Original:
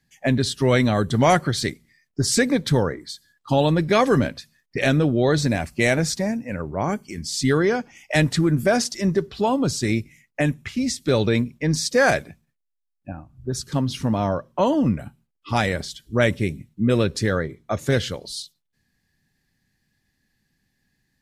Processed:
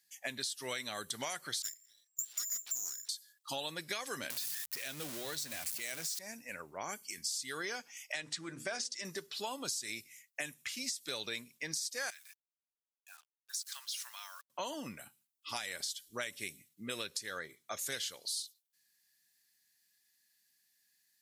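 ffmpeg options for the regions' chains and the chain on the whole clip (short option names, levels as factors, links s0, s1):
-filter_complex "[0:a]asettb=1/sr,asplit=3[s0][s1][s2];[s0]atrim=end=1.624[s3];[s1]atrim=start=1.62:end=3.09,asetpts=PTS-STARTPTS,afade=t=in:d=0.004:c=qsin,afade=t=out:st=1.466:d=0.004:c=qsin,lowpass=f=3200:t=q:w=0.5098,lowpass=f=3200:t=q:w=0.6013,lowpass=f=3200:t=q:w=0.9,lowpass=f=3200:t=q:w=2.563,afreqshift=-3800,aeval=exprs='abs(val(0))':c=same[s4];[s2]atrim=start=3.086[s5];[s3][s4]acrossfade=d=0.004:c1=hsin:c2=qsin[s6];[s6][s5]acrossfade=d=0.004:c1=qsin:c2=hsin,asettb=1/sr,asplit=3[s7][s8][s9];[s7]atrim=end=4.304[s10];[s8]atrim=start=4.3:end=6.19,asetpts=PTS-STARTPTS,afade=t=in:d=0.004:c=qsin,afade=t=out:st=1.886:d=0.004:c=qsin,aeval=exprs='val(0)+0.5*0.0631*sgn(val(0))':c=same,lowshelf=f=150:g=8.5,bandreject=f=60:t=h:w=6,bandreject=f=120:t=h:w=6,bandreject=f=180:t=h:w=6[s11];[s9]atrim=start=6.186[s12];[s10][s11]acrossfade=d=0.004:c1=hsin:c2=qsin[s13];[s13][s12]acrossfade=d=0.004:c1=qsin:c2=hsin,asettb=1/sr,asplit=3[s14][s15][s16];[s14]atrim=end=8.124[s17];[s15]atrim=start=8.12:end=9.05,asetpts=PTS-STARTPTS,afade=t=in:d=0.004:c=qsin,afade=t=out:st=0.926:d=0.004:c=qsin,lowpass=f=8700:w=0.5412,lowpass=f=8700:w=1.3066,aemphasis=mode=reproduction:type=cd,bandreject=f=50:t=h:w=6,bandreject=f=100:t=h:w=6,bandreject=f=150:t=h:w=6,bandreject=f=200:t=h:w=6,bandreject=f=250:t=h:w=6,bandreject=f=300:t=h:w=6,bandreject=f=350:t=h:w=6,bandreject=f=400:t=h:w=6,bandreject=f=450:t=h:w=6,bandreject=f=500:t=h:w=6[s18];[s16]atrim=start=9.046[s19];[s17][s18]acrossfade=d=0.004:c1=hsin:c2=qsin[s20];[s20][s19]acrossfade=d=0.004:c1=qsin:c2=hsin,asettb=1/sr,asplit=3[s21][s22][s23];[s21]atrim=end=12.104[s24];[s22]atrim=start=12.1:end=14.5,asetpts=PTS-STARTPTS,afade=t=in:d=0.004:c=qsin,afade=t=out:st=2.396:d=0.004:c=qsin,highpass=f=1200:w=0.5412,highpass=f=1200:w=1.3066,acompressor=threshold=0.0158:ratio=3:attack=3.2:release=140:knee=1:detection=peak,acrusher=bits=8:mix=0:aa=0.5[s25];[s23]atrim=start=14.496[s26];[s24][s25]acrossfade=d=0.004:c1=hsin:c2=qsin[s27];[s27][s26]acrossfade=d=0.004:c1=qsin:c2=hsin,aderivative,alimiter=limit=0.075:level=0:latency=1:release=228,acompressor=threshold=0.01:ratio=6,volume=1.68"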